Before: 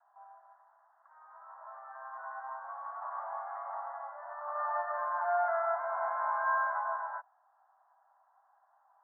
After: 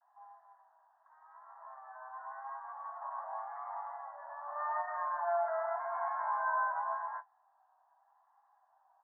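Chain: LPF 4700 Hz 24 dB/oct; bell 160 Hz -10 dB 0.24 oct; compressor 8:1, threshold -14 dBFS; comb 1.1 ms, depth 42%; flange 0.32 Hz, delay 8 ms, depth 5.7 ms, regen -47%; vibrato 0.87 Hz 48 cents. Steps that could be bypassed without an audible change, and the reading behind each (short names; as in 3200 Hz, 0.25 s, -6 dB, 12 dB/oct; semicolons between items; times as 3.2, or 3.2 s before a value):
LPF 4700 Hz: input band ends at 1800 Hz; bell 160 Hz: input band starts at 510 Hz; compressor, threshold -14 dBFS: input peak -20.0 dBFS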